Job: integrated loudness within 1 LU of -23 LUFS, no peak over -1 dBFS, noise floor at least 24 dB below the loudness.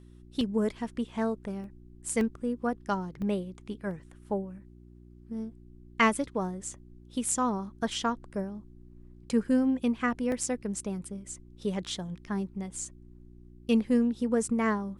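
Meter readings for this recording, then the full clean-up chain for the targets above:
dropouts 6; longest dropout 1.6 ms; hum 60 Hz; harmonics up to 360 Hz; hum level -51 dBFS; loudness -31.0 LUFS; peak -11.0 dBFS; loudness target -23.0 LUFS
-> interpolate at 0.41/1.64/2.21/3.22/3.91/10.32, 1.6 ms; de-hum 60 Hz, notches 6; gain +8 dB

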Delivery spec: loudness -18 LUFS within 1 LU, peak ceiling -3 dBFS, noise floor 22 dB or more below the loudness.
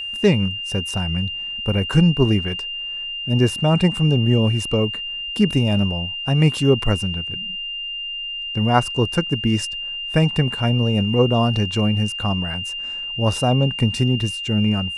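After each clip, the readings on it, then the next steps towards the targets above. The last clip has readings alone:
ticks 41/s; steady tone 2800 Hz; tone level -26 dBFS; loudness -20.0 LUFS; peak -1.5 dBFS; loudness target -18.0 LUFS
-> de-click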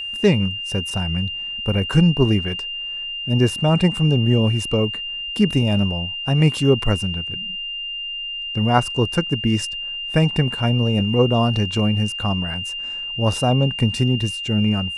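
ticks 0.067/s; steady tone 2800 Hz; tone level -26 dBFS
-> notch 2800 Hz, Q 30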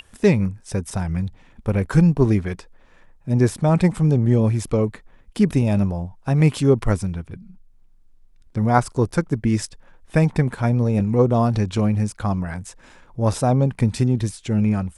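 steady tone none; loudness -20.5 LUFS; peak -2.0 dBFS; loudness target -18.0 LUFS
-> gain +2.5 dB; limiter -3 dBFS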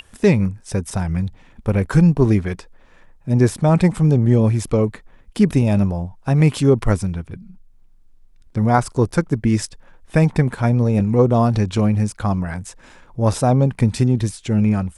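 loudness -18.0 LUFS; peak -3.0 dBFS; noise floor -49 dBFS

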